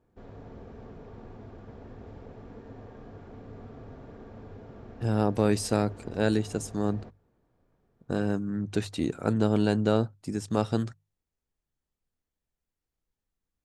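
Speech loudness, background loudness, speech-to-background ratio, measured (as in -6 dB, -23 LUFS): -28.5 LUFS, -47.0 LUFS, 18.5 dB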